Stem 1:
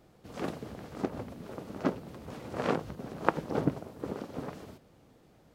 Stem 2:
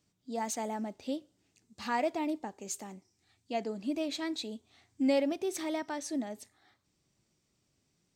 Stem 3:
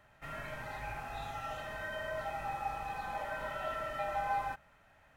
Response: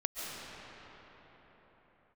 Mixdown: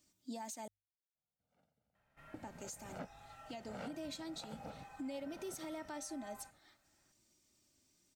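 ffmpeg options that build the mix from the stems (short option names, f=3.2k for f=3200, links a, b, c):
-filter_complex "[0:a]aecho=1:1:1.4:0.8,asoftclip=type=tanh:threshold=-21dB,adelay=1150,volume=-9dB[a];[1:a]highshelf=f=5.1k:g=11,aecho=1:1:3.3:0.53,volume=-3dB,asplit=3[b][c][d];[b]atrim=end=0.68,asetpts=PTS-STARTPTS,afade=t=out:st=0.676:d=0.004:c=hsin[e];[c]atrim=start=0.68:end=2.34,asetpts=PTS-STARTPTS,volume=0[f];[d]atrim=start=2.34,asetpts=PTS-STARTPTS,afade=t=in:d=0.004:c=hsin[g];[e][f][g]concat=n=3:v=0:a=1,asplit=2[h][i];[2:a]adelay=1950,volume=-15dB[j];[i]apad=whole_len=295129[k];[a][k]sidechaingate=range=-34dB:threshold=-59dB:ratio=16:detection=peak[l];[l][h]amix=inputs=2:normalize=0,bandreject=f=50:t=h:w=6,bandreject=f=100:t=h:w=6,acompressor=threshold=-35dB:ratio=6,volume=0dB[m];[j][m]amix=inputs=2:normalize=0,alimiter=level_in=12.5dB:limit=-24dB:level=0:latency=1:release=257,volume=-12.5dB"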